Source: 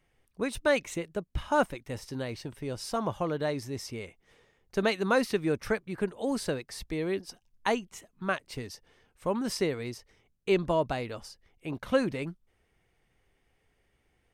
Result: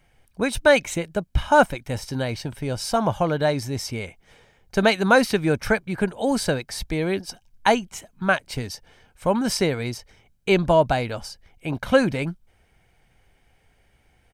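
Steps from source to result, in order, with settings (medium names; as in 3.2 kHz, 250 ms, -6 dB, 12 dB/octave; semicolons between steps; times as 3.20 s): comb 1.3 ms, depth 36%; trim +9 dB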